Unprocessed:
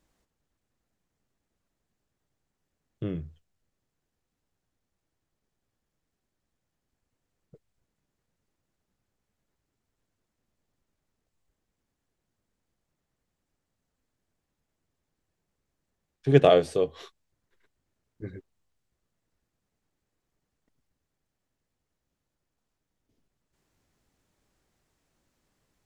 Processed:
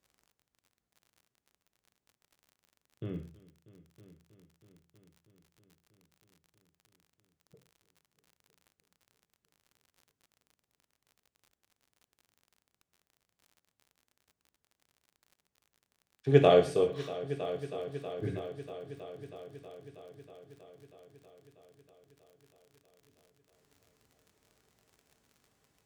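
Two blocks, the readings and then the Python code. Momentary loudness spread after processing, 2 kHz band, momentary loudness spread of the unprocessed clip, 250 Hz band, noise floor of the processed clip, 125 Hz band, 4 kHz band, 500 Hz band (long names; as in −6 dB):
23 LU, −3.0 dB, 24 LU, −3.5 dB, below −85 dBFS, −3.0 dB, −3.0 dB, −2.0 dB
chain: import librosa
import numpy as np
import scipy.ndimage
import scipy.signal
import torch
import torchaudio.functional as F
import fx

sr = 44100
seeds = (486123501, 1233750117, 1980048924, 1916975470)

p1 = scipy.signal.sosfilt(scipy.signal.butter(2, 62.0, 'highpass', fs=sr, output='sos'), x)
p2 = p1 + fx.echo_heads(p1, sr, ms=320, heads='all three', feedback_pct=62, wet_db=-22, dry=0)
p3 = fx.rider(p2, sr, range_db=4, speed_s=2.0)
p4 = fx.rev_gated(p3, sr, seeds[0], gate_ms=160, shape='falling', drr_db=4.5)
p5 = fx.dmg_crackle(p4, sr, seeds[1], per_s=51.0, level_db=-46.0)
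y = p5 * 10.0 ** (-3.0 / 20.0)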